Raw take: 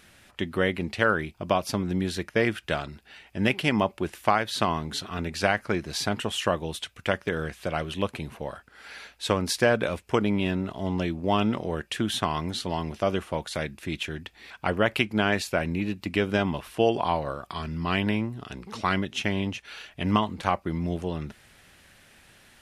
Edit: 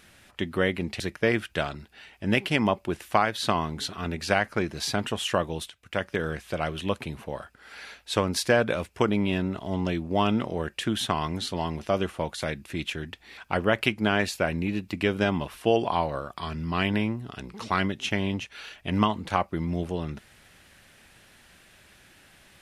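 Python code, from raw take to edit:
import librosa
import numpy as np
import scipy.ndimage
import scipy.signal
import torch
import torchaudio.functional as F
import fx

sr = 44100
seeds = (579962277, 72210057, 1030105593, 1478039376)

y = fx.edit(x, sr, fx.cut(start_s=1.0, length_s=1.13),
    fx.fade_in_from(start_s=6.83, length_s=0.42, floor_db=-17.0), tone=tone)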